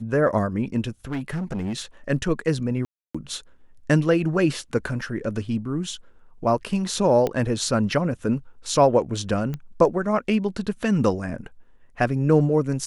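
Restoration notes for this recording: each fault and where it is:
1.09–1.82 clipped -24 dBFS
2.85–3.15 gap 0.295 s
7.27 pop -12 dBFS
9.54 pop -18 dBFS

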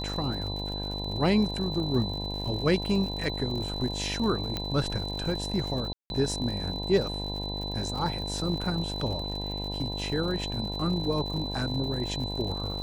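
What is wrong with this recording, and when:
buzz 50 Hz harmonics 20 -35 dBFS
crackle 110/s -36 dBFS
tone 4000 Hz -35 dBFS
4.57 pop -16 dBFS
5.93–6.1 gap 0.171 s

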